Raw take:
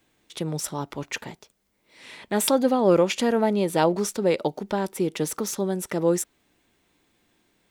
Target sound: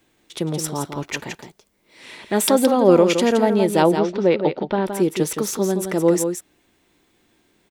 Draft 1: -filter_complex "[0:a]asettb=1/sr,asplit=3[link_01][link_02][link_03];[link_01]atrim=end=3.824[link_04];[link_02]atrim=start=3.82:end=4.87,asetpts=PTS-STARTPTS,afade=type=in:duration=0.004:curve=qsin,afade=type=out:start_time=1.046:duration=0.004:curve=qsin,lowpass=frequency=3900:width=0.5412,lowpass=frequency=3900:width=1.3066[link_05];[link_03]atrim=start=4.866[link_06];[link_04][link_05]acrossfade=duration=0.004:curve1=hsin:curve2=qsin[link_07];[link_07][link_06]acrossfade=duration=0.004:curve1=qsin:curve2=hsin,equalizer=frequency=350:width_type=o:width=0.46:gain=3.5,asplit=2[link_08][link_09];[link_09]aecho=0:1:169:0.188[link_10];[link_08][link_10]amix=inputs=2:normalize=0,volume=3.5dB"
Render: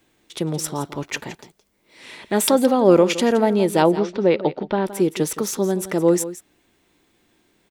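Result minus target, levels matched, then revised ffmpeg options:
echo-to-direct −7 dB
-filter_complex "[0:a]asettb=1/sr,asplit=3[link_01][link_02][link_03];[link_01]atrim=end=3.824[link_04];[link_02]atrim=start=3.82:end=4.87,asetpts=PTS-STARTPTS,afade=type=in:duration=0.004:curve=qsin,afade=type=out:start_time=1.046:duration=0.004:curve=qsin,lowpass=frequency=3900:width=0.5412,lowpass=frequency=3900:width=1.3066[link_05];[link_03]atrim=start=4.866[link_06];[link_04][link_05]acrossfade=duration=0.004:curve1=hsin:curve2=qsin[link_07];[link_07][link_06]acrossfade=duration=0.004:curve1=qsin:curve2=hsin,equalizer=frequency=350:width_type=o:width=0.46:gain=3.5,asplit=2[link_08][link_09];[link_09]aecho=0:1:169:0.422[link_10];[link_08][link_10]amix=inputs=2:normalize=0,volume=3.5dB"

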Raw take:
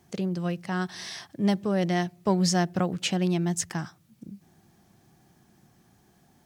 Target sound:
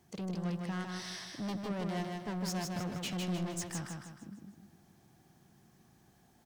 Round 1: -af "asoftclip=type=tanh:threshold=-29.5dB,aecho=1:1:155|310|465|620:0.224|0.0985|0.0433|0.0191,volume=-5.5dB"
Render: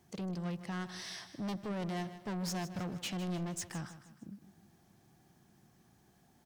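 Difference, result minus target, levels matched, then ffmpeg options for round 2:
echo-to-direct −9.5 dB
-af "asoftclip=type=tanh:threshold=-29.5dB,aecho=1:1:155|310|465|620|775|930:0.668|0.294|0.129|0.0569|0.0251|0.011,volume=-5.5dB"

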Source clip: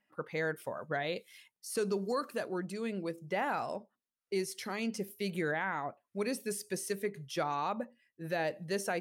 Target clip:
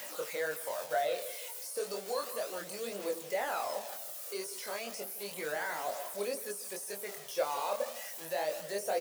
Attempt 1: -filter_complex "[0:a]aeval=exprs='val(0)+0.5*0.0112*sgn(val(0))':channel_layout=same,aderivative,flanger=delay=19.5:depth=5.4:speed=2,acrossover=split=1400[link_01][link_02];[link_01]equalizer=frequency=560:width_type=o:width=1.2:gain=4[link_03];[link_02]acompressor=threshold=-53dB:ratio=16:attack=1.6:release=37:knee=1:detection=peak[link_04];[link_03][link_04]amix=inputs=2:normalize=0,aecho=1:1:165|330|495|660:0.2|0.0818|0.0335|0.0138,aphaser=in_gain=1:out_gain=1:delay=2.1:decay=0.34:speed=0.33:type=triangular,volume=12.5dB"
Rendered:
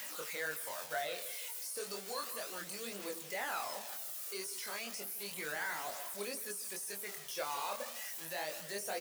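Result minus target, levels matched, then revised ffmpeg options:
500 Hz band −6.0 dB
-filter_complex "[0:a]aeval=exprs='val(0)+0.5*0.0112*sgn(val(0))':channel_layout=same,aderivative,flanger=delay=19.5:depth=5.4:speed=2,acrossover=split=1400[link_01][link_02];[link_01]equalizer=frequency=560:width_type=o:width=1.2:gain=14.5[link_03];[link_02]acompressor=threshold=-53dB:ratio=16:attack=1.6:release=37:knee=1:detection=peak[link_04];[link_03][link_04]amix=inputs=2:normalize=0,aecho=1:1:165|330|495|660:0.2|0.0818|0.0335|0.0138,aphaser=in_gain=1:out_gain=1:delay=2.1:decay=0.34:speed=0.33:type=triangular,volume=12.5dB"

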